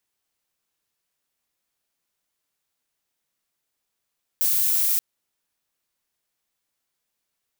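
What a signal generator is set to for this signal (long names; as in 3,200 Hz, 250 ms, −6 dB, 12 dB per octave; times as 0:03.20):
noise violet, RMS −21 dBFS 0.58 s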